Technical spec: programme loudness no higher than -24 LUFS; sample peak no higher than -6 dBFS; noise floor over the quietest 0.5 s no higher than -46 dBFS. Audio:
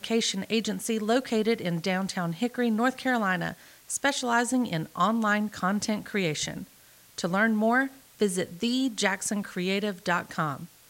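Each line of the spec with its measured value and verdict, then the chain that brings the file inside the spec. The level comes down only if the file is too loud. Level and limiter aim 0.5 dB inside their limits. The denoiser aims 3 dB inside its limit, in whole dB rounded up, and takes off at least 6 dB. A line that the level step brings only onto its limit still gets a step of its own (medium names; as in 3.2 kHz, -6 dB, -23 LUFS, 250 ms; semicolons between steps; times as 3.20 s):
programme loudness -27.5 LUFS: pass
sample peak -10.5 dBFS: pass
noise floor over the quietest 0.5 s -56 dBFS: pass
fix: none needed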